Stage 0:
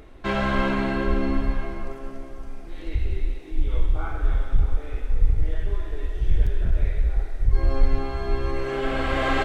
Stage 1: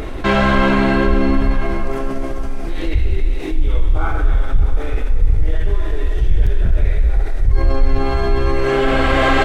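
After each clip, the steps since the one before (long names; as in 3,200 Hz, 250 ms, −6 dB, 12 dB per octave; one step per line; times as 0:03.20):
envelope flattener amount 50%
level +3 dB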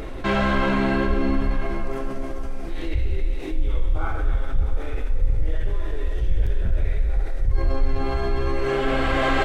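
flanger 0.55 Hz, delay 5.9 ms, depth 9.5 ms, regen −73%
steady tone 530 Hz −44 dBFS
level −2.5 dB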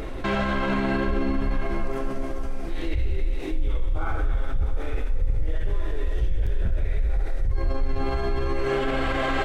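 brickwall limiter −15.5 dBFS, peak gain reduction 7 dB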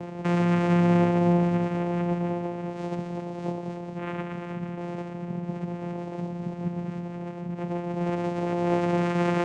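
delay that swaps between a low-pass and a high-pass 115 ms, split 1,000 Hz, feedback 84%, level −7 dB
convolution reverb RT60 0.65 s, pre-delay 121 ms, DRR 10 dB
channel vocoder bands 4, saw 174 Hz
level +2 dB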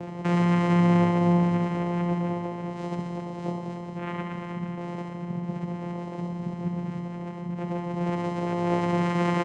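repeating echo 68 ms, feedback 48%, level −7.5 dB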